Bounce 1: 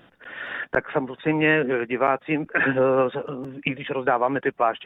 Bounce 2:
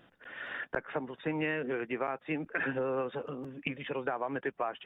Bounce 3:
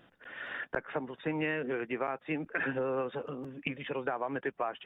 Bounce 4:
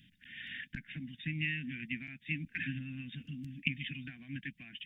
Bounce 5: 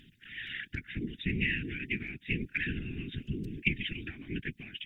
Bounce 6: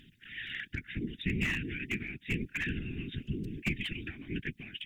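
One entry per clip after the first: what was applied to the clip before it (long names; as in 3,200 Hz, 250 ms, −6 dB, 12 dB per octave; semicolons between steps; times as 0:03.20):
downward compressor, threshold −21 dBFS, peak gain reduction 7 dB; level −8 dB
no processing that can be heard
inverse Chebyshev band-stop filter 380–1,300 Hz, stop band 40 dB; level +4 dB
random phases in short frames; phase shifter 0.89 Hz, delay 1.5 ms, feedback 29%; level +4 dB
slew-rate limiting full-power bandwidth 75 Hz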